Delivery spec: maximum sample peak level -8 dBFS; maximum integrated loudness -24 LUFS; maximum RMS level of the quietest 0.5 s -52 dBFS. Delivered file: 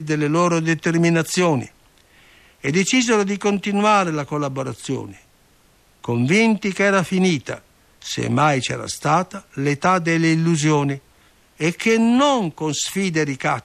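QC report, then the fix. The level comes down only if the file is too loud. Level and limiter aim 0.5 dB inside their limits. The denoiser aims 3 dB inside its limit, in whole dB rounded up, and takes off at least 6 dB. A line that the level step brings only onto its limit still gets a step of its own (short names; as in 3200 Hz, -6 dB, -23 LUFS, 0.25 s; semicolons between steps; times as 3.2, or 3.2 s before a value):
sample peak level -6.0 dBFS: fail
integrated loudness -19.5 LUFS: fail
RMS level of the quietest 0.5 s -55 dBFS: OK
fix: gain -5 dB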